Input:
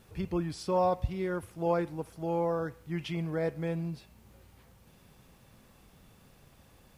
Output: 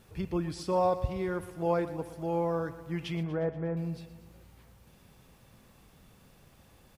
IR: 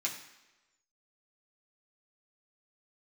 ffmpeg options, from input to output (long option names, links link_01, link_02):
-filter_complex "[0:a]asettb=1/sr,asplit=3[link_01][link_02][link_03];[link_01]atrim=end=3.234[link_04];[link_02]atrim=start=3.23:end=3.77,asetpts=PTS-STARTPTS,afade=type=in:duration=0.004:curve=qsin,afade=type=out:start_time=0.536:duration=0.004:curve=qsin,lowpass=frequency=1700:width=0.5412,lowpass=frequency=1700:width=1.3066[link_05];[link_03]atrim=start=3.766[link_06];[link_04][link_05]acrossfade=duration=0.004:curve1=hsin:curve2=qsin[link_07];[link_07][link_06]acrossfade=duration=0.004:curve1=qsin:curve2=hsin,aecho=1:1:119|238|357|476|595|714:0.178|0.107|0.064|0.0384|0.023|0.0138"